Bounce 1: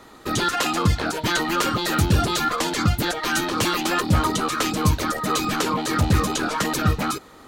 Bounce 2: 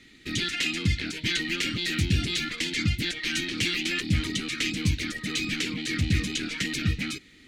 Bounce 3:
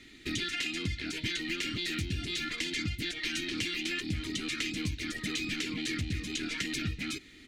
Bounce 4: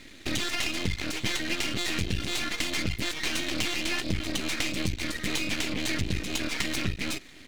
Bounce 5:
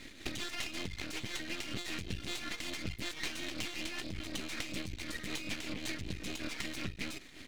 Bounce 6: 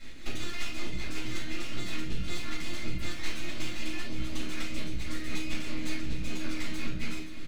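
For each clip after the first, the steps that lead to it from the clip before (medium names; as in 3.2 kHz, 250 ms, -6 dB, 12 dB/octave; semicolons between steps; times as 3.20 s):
FFT filter 300 Hz 0 dB, 610 Hz -20 dB, 1.1 kHz -24 dB, 2.1 kHz +9 dB, 8.6 kHz -3 dB, 15 kHz -14 dB; trim -5.5 dB
comb 2.9 ms, depth 31%; compression, threshold -31 dBFS, peak gain reduction 12.5 dB
half-wave rectifier; trim +8.5 dB
compression 6:1, threshold -32 dBFS, peak gain reduction 10.5 dB; tremolo triangle 5.3 Hz, depth 55%
delay 522 ms -12 dB; simulated room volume 340 m³, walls furnished, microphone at 6.8 m; trim -9 dB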